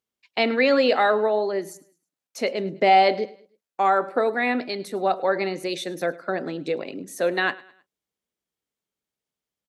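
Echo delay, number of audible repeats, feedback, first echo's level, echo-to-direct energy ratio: 0.105 s, 2, 39%, -21.0 dB, -20.5 dB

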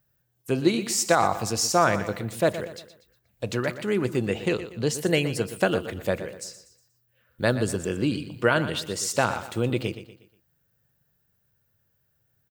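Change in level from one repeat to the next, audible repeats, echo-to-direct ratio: -8.0 dB, 3, -12.0 dB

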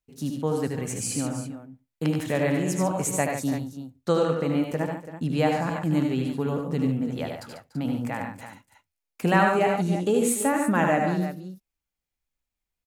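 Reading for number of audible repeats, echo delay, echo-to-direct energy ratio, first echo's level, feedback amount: 4, 76 ms, -1.5 dB, -6.0 dB, no steady repeat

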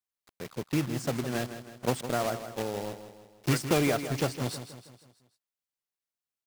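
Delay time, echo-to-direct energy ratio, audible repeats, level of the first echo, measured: 0.16 s, -10.0 dB, 4, -11.0 dB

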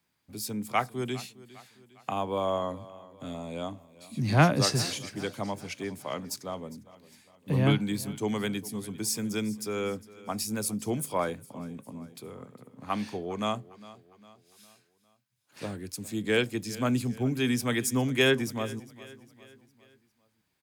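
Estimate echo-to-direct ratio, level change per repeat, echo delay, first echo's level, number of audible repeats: -18.0 dB, -6.5 dB, 0.405 s, -19.0 dB, 3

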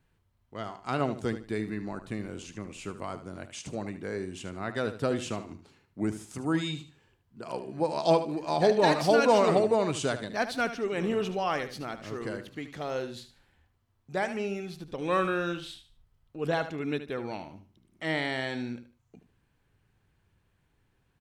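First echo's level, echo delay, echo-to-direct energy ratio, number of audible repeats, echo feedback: -11.5 dB, 75 ms, -11.0 dB, 3, 27%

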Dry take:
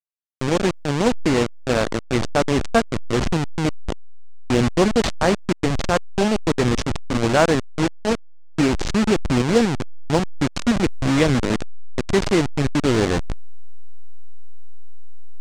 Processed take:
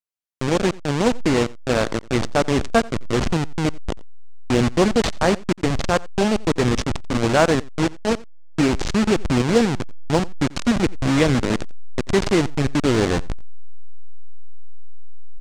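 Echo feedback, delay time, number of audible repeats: no steady repeat, 88 ms, 1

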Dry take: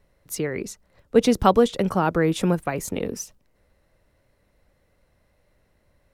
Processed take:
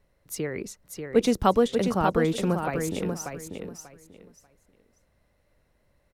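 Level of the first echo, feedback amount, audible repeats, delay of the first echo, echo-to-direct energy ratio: -6.0 dB, 21%, 3, 0.589 s, -6.0 dB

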